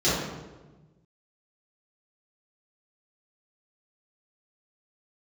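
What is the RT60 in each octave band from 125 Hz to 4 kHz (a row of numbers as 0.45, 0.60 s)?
1.8, 1.5, 1.3, 1.1, 0.90, 0.75 s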